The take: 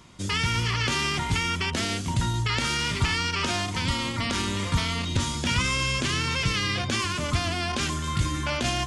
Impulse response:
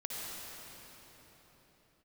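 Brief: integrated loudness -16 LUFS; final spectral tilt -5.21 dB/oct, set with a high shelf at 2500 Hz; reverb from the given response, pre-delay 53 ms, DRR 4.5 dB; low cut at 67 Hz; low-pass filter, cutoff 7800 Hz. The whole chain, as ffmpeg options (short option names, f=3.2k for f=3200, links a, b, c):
-filter_complex "[0:a]highpass=67,lowpass=7.8k,highshelf=f=2.5k:g=-9,asplit=2[a][b];[1:a]atrim=start_sample=2205,adelay=53[c];[b][c]afir=irnorm=-1:irlink=0,volume=-7dB[d];[a][d]amix=inputs=2:normalize=0,volume=11dB"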